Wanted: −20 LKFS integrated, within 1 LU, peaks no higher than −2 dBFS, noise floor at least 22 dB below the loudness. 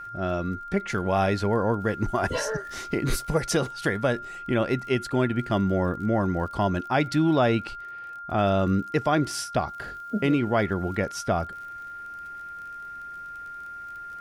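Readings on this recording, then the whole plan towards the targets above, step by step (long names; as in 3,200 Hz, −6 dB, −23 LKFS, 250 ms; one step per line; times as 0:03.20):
crackle rate 29 per second; interfering tone 1,400 Hz; level of the tone −36 dBFS; integrated loudness −26.0 LKFS; sample peak −10.0 dBFS; target loudness −20.0 LKFS
→ click removal
notch filter 1,400 Hz, Q 30
level +6 dB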